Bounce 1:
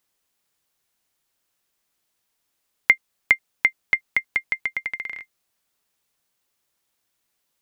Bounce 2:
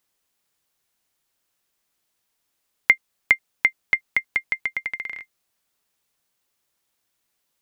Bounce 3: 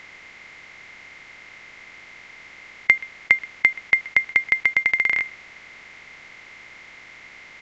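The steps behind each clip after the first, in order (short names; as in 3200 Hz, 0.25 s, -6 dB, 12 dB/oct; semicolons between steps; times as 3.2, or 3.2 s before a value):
nothing audible
per-bin compression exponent 0.4; echo 0.127 s -20.5 dB; gain -1 dB; µ-law 128 kbps 16000 Hz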